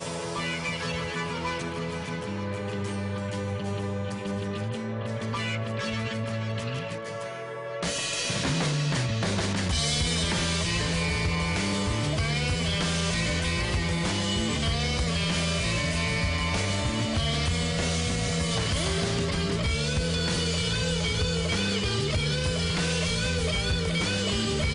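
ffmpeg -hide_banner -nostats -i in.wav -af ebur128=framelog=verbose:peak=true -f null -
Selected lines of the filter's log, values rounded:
Integrated loudness:
  I:         -27.4 LUFS
  Threshold: -37.4 LUFS
Loudness range:
  LRA:         5.5 LU
  Threshold: -47.3 LUFS
  LRA low:   -31.5 LUFS
  LRA high:  -26.0 LUFS
True peak:
  Peak:      -15.7 dBFS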